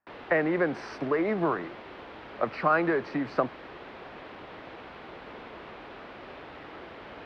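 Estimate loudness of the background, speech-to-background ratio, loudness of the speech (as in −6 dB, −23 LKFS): −44.5 LKFS, 16.0 dB, −28.5 LKFS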